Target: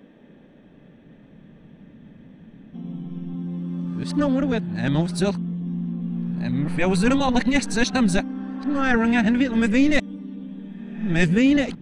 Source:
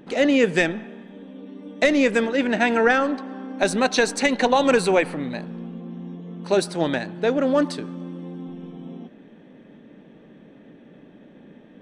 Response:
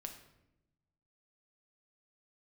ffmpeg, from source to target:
-af "areverse,asubboost=boost=11.5:cutoff=140,volume=-2dB"

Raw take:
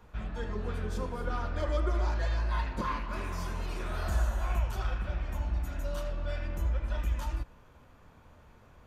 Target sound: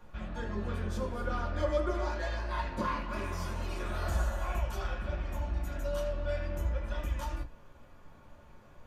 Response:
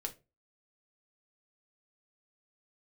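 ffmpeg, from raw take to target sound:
-filter_complex "[1:a]atrim=start_sample=2205,atrim=end_sample=3528,asetrate=57330,aresample=44100[a];[0:a][a]afir=irnorm=-1:irlink=0,volume=3.5dB"

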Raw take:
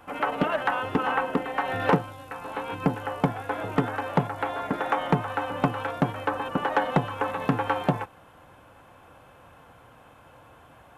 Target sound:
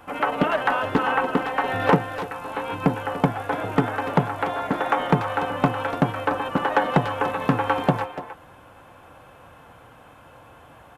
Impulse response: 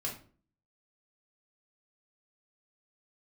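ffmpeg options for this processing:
-filter_complex "[0:a]asplit=2[a][b];[b]adelay=290,highpass=300,lowpass=3.4k,asoftclip=type=hard:threshold=-21dB,volume=-8dB[c];[a][c]amix=inputs=2:normalize=0,volume=3.5dB"

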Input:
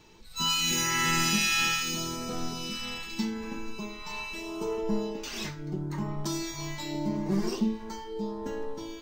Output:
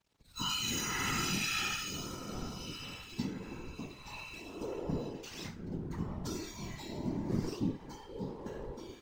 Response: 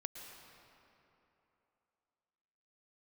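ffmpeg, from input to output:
-af "aeval=exprs='sgn(val(0))*max(abs(val(0))-0.00266,0)':c=same,equalizer=f=85:w=0.57:g=6,afftfilt=real='hypot(re,im)*cos(2*PI*random(0))':imag='hypot(re,im)*sin(2*PI*random(1))':win_size=512:overlap=0.75,volume=-2dB"

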